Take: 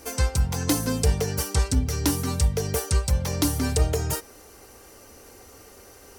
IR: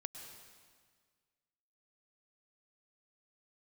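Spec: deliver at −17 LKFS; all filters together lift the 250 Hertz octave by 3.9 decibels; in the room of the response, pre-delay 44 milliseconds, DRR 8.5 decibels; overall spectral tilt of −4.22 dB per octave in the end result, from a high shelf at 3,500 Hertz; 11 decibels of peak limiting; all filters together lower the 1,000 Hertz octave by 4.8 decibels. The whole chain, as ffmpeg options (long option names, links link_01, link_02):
-filter_complex "[0:a]equalizer=frequency=250:width_type=o:gain=5,equalizer=frequency=1000:width_type=o:gain=-7,highshelf=frequency=3500:gain=4,alimiter=limit=-17.5dB:level=0:latency=1,asplit=2[link_01][link_02];[1:a]atrim=start_sample=2205,adelay=44[link_03];[link_02][link_03]afir=irnorm=-1:irlink=0,volume=-5.5dB[link_04];[link_01][link_04]amix=inputs=2:normalize=0,volume=10dB"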